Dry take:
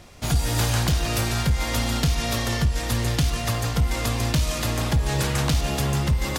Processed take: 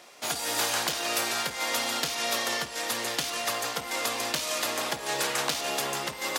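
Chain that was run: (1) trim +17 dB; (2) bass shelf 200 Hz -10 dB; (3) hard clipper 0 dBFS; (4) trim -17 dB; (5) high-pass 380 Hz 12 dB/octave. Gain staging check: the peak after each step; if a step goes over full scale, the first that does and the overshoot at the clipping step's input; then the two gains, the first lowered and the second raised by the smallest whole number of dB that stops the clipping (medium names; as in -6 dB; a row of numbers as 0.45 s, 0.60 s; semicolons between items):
+6.0 dBFS, +4.5 dBFS, 0.0 dBFS, -17.0 dBFS, -13.0 dBFS; step 1, 4.5 dB; step 1 +12 dB, step 4 -12 dB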